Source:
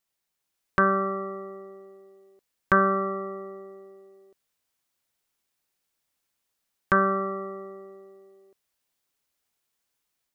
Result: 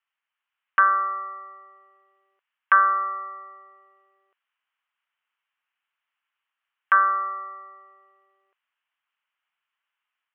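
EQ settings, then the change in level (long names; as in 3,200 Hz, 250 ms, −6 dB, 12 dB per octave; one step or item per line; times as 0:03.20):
high-pass with resonance 1,100 Hz, resonance Q 1.6
elliptic low-pass filter 3,000 Hz, stop band 40 dB
spectral tilt +2.5 dB per octave
0.0 dB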